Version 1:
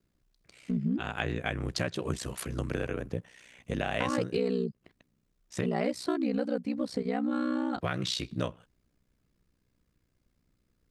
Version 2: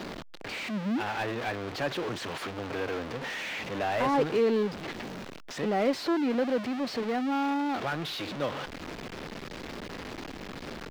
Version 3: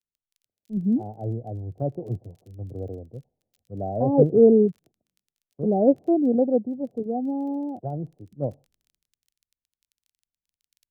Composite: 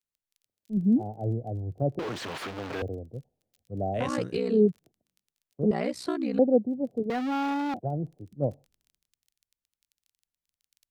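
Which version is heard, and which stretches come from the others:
3
1.99–2.82 s: from 2
4.01–4.56 s: from 1, crossfade 0.16 s
5.71–6.39 s: from 1
7.10–7.74 s: from 2

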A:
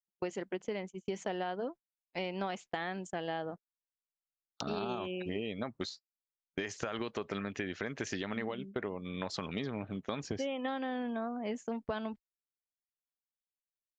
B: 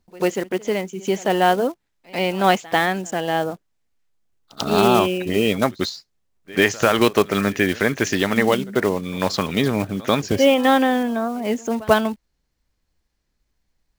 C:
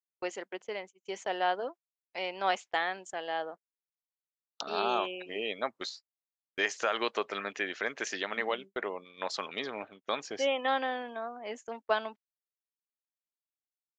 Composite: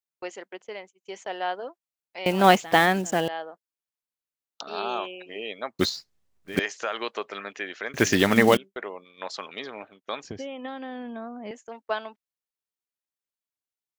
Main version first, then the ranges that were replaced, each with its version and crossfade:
C
2.26–3.28 s: from B
5.79–6.59 s: from B
7.94–8.57 s: from B
10.24–11.51 s: from A

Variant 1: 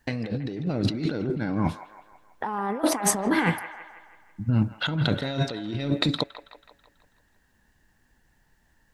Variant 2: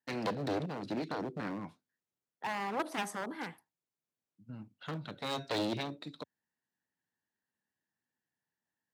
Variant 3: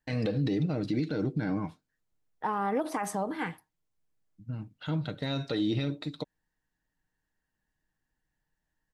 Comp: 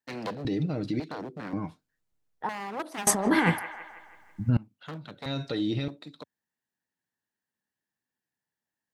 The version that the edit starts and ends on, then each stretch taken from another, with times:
2
0.45–1.00 s: from 3
1.53–2.49 s: from 3
3.07–4.57 s: from 1
5.26–5.88 s: from 3

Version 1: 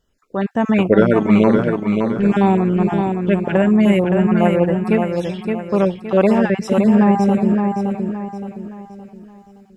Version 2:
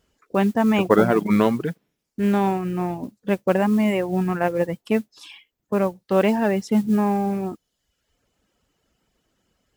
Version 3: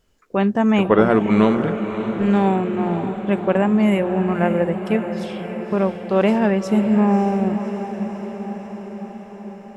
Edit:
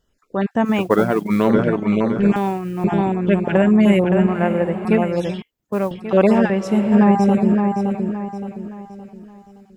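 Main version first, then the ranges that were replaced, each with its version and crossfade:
1
0.70–1.48 s: from 2, crossfade 0.16 s
2.36–2.84 s: from 2
4.27–4.85 s: from 3
5.42–5.91 s: from 2
6.50–6.92 s: from 3

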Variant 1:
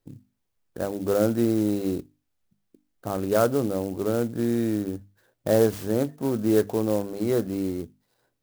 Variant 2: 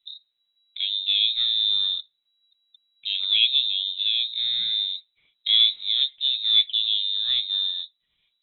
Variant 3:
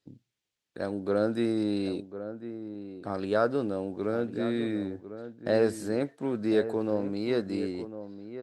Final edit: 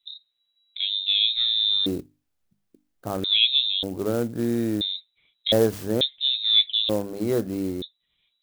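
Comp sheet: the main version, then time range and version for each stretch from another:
2
1.86–3.24 s: from 1
3.83–4.81 s: from 1
5.52–6.01 s: from 1
6.89–7.82 s: from 1
not used: 3

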